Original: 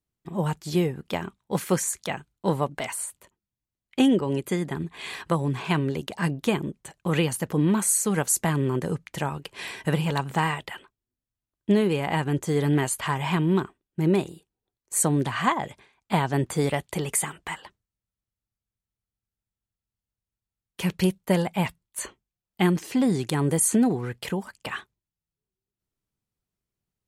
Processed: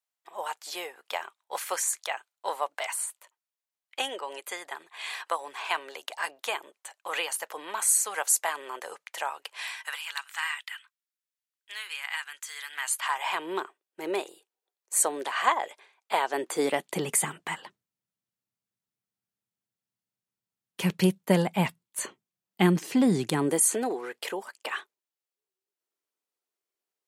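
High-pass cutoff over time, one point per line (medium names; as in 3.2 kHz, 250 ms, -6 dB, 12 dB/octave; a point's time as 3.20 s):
high-pass 24 dB/octave
9.50 s 640 Hz
10.08 s 1.4 kHz
12.68 s 1.4 kHz
13.49 s 450 Hz
16.25 s 450 Hz
17.21 s 140 Hz
23.28 s 140 Hz
23.75 s 370 Hz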